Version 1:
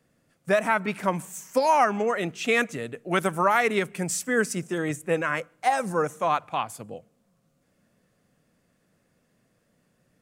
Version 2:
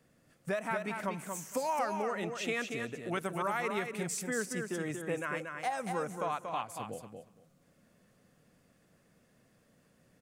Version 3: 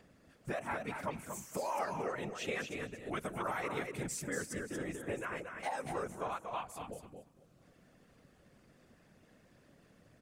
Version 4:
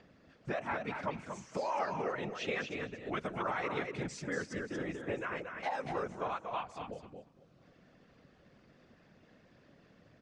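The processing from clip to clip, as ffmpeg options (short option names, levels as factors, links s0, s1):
-filter_complex "[0:a]acompressor=threshold=0.00891:ratio=2,asplit=2[s0][s1];[s1]aecho=0:1:233|466|699:0.531|0.0849|0.0136[s2];[s0][s2]amix=inputs=2:normalize=0"
-filter_complex "[0:a]acrossover=split=5800[s0][s1];[s0]acompressor=mode=upward:threshold=0.00282:ratio=2.5[s2];[s2][s1]amix=inputs=2:normalize=0,afftfilt=real='hypot(re,im)*cos(2*PI*random(0))':imag='hypot(re,im)*sin(2*PI*random(1))':win_size=512:overlap=0.75,volume=1.26"
-af "lowpass=f=5500:w=0.5412,lowpass=f=5500:w=1.3066,lowshelf=f=64:g=-5.5,volume=1.26"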